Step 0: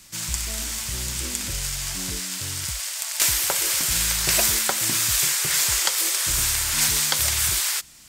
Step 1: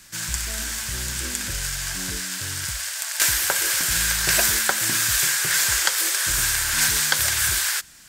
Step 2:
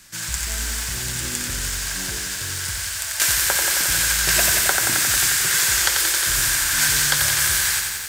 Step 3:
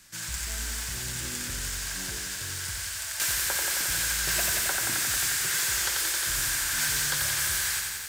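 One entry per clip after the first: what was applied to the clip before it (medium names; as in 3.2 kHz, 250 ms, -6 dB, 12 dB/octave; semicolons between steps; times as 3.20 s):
peaking EQ 1.6 kHz +11 dB 0.32 oct; de-hum 71.37 Hz, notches 4
bit-crushed delay 89 ms, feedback 80%, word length 7-bit, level -5 dB
saturation -13.5 dBFS, distortion -16 dB; trim -6.5 dB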